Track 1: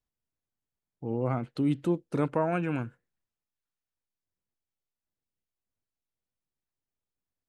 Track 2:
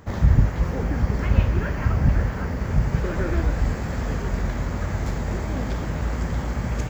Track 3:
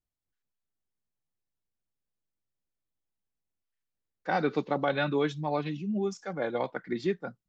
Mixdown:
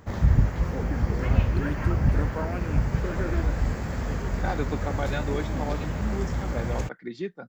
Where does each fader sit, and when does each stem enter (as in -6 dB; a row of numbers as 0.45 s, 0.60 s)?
-6.0 dB, -3.0 dB, -3.5 dB; 0.00 s, 0.00 s, 0.15 s